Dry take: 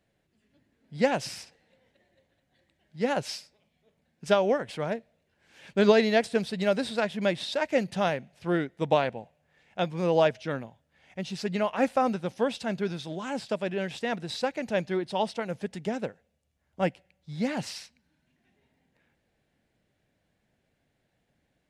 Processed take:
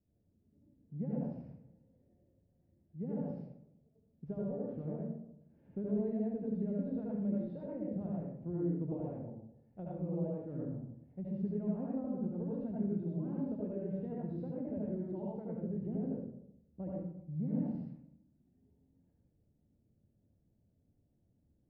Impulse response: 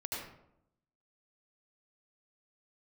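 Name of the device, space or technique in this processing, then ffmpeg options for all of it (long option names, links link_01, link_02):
television next door: -filter_complex "[0:a]acompressor=threshold=-31dB:ratio=5,lowpass=280[link_01];[1:a]atrim=start_sample=2205[link_02];[link_01][link_02]afir=irnorm=-1:irlink=0,volume=1dB"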